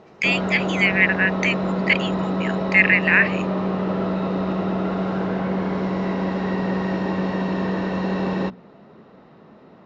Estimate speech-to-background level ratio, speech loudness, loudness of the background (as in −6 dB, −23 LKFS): 5.0 dB, −19.0 LKFS, −24.0 LKFS